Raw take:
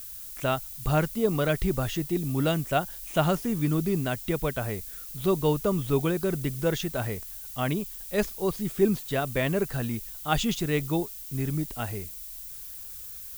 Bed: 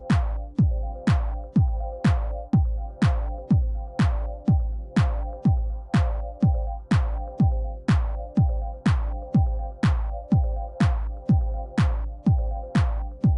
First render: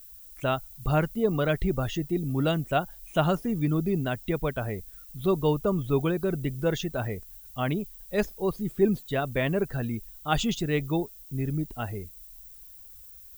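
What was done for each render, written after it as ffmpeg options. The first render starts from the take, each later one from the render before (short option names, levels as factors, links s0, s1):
-af "afftdn=nr=12:nf=-41"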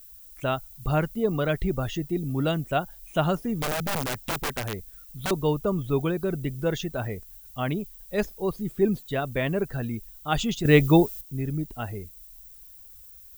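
-filter_complex "[0:a]asettb=1/sr,asplit=3[s0][s1][s2];[s0]atrim=end=3.624[s3];[s1]atrim=start=3.62:end=5.31,asetpts=PTS-STARTPTS,afade=t=in:d=0.004:c=qsin,afade=t=out:st=1.686:d=0.004:c=qsin,aeval=exprs='(mod(13.3*val(0)+1,2)-1)/13.3':c=same[s4];[s2]atrim=start=5.306[s5];[s3][s4]acrossfade=d=0.004:c1=hsin:c2=qsin[s6];[s6][s5]acrossfade=d=0.004:c1=qsin:c2=hsin,asplit=3[s7][s8][s9];[s7]atrim=end=10.652[s10];[s8]atrim=start=10.648:end=11.212,asetpts=PTS-STARTPTS,volume=3.16[s11];[s9]atrim=start=11.208[s12];[s10][s11]acrossfade=d=0.004:c1=hsin:c2=hsin[s13];[s13][s12]acrossfade=d=0.004:c1=hsin:c2=hsin"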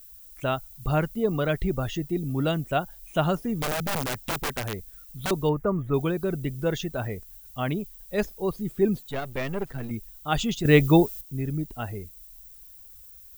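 -filter_complex "[0:a]asettb=1/sr,asplit=3[s0][s1][s2];[s0]atrim=end=5.494[s3];[s1]atrim=start=5.49:end=5.94,asetpts=PTS-STARTPTS,afade=t=in:d=0.004:c=qsin,afade=t=out:st=0.446:d=0.004:c=qsin,highshelf=f=2500:t=q:w=3:g=-10[s4];[s2]atrim=start=5.936[s5];[s3][s4]acrossfade=d=0.004:c1=hsin:c2=qsin[s6];[s6][s5]acrossfade=d=0.004:c1=qsin:c2=hsin,asettb=1/sr,asplit=3[s7][s8][s9];[s7]atrim=end=9.104[s10];[s8]atrim=start=9.1:end=9.91,asetpts=PTS-STARTPTS,afade=t=in:d=0.004:c=qsin,afade=t=out:st=0.806:d=0.004:c=qsin,aeval=exprs='if(lt(val(0),0),0.251*val(0),val(0))':c=same[s11];[s9]atrim=start=9.906[s12];[s10][s11]acrossfade=d=0.004:c1=hsin:c2=qsin[s13];[s13][s12]acrossfade=d=0.004:c1=qsin:c2=hsin"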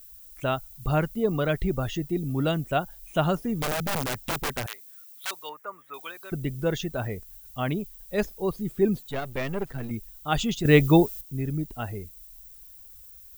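-filter_complex "[0:a]asettb=1/sr,asplit=3[s0][s1][s2];[s0]atrim=end=4.664[s3];[s1]atrim=start=4.66:end=6.32,asetpts=PTS-STARTPTS,afade=t=in:d=0.004:c=qsin,afade=t=out:st=1.656:d=0.004:c=qsin,highpass=1300[s4];[s2]atrim=start=6.316[s5];[s3][s4]acrossfade=d=0.004:c1=hsin:c2=qsin[s6];[s6][s5]acrossfade=d=0.004:c1=qsin:c2=hsin"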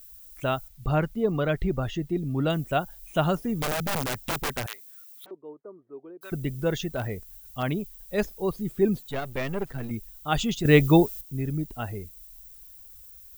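-filter_complex "[0:a]asettb=1/sr,asplit=3[s0][s1][s2];[s0]atrim=end=0.684[s3];[s1]atrim=start=0.68:end=2.5,asetpts=PTS-STARTPTS,afade=t=in:d=0.004:c=qsin,afade=t=out:st=1.816:d=0.004:c=qsin,highshelf=f=5700:g=-10.5[s4];[s2]atrim=start=2.496[s5];[s3][s4]acrossfade=d=0.004:c1=hsin:c2=qsin[s6];[s6][s5]acrossfade=d=0.004:c1=qsin:c2=hsin,asplit=3[s7][s8][s9];[s7]afade=t=out:st=5.24:d=0.02[s10];[s8]lowpass=f=350:t=q:w=2.6,afade=t=in:st=5.24:d=0.02,afade=t=out:st=6.21:d=0.02[s11];[s9]afade=t=in:st=6.21:d=0.02[s12];[s10][s11][s12]amix=inputs=3:normalize=0,asettb=1/sr,asplit=3[s13][s14][s15];[s13]atrim=end=6.874[s16];[s14]atrim=start=6.87:end=7.63,asetpts=PTS-STARTPTS,afade=t=in:d=0.004:c=qsin,afade=t=out:st=0.756:d=0.004:c=qsin,aeval=exprs='0.0891*(abs(mod(val(0)/0.0891+3,4)-2)-1)':c=same[s17];[s15]atrim=start=7.626[s18];[s16][s17]acrossfade=d=0.004:c1=hsin:c2=qsin[s19];[s19][s18]acrossfade=d=0.004:c1=qsin:c2=hsin"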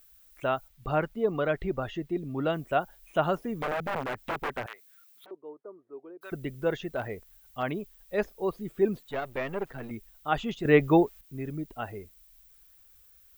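-filter_complex "[0:a]acrossover=split=2600[s0][s1];[s1]acompressor=threshold=0.00794:ratio=4:attack=1:release=60[s2];[s0][s2]amix=inputs=2:normalize=0,bass=f=250:g=-10,treble=f=4000:g=-9"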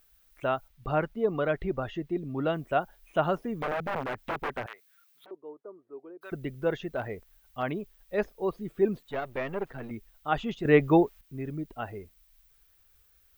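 -af "highshelf=f=4800:g=-6.5,bandreject=f=7300:w=19"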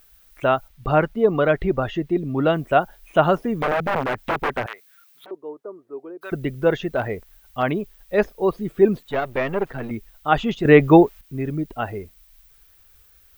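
-af "volume=2.99,alimiter=limit=0.891:level=0:latency=1"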